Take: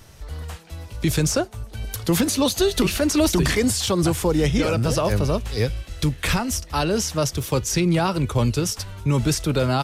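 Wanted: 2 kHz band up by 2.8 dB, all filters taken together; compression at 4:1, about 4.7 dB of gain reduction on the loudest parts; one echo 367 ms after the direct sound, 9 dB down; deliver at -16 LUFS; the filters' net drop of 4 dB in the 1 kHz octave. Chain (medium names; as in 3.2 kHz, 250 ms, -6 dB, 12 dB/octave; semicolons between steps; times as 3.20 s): peaking EQ 1 kHz -7 dB; peaking EQ 2 kHz +5.5 dB; compression 4:1, threshold -21 dBFS; delay 367 ms -9 dB; trim +9 dB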